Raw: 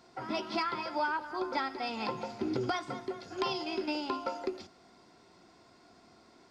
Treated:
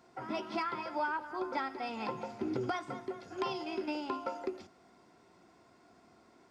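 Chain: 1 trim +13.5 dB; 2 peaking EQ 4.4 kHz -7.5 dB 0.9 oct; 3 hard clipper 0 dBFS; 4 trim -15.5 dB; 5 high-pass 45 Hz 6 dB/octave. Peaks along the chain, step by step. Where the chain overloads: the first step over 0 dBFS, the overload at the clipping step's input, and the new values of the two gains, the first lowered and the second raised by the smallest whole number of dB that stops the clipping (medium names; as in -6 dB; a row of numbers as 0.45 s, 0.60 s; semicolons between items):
-5.5 dBFS, -5.5 dBFS, -5.5 dBFS, -21.0 dBFS, -21.0 dBFS; nothing clips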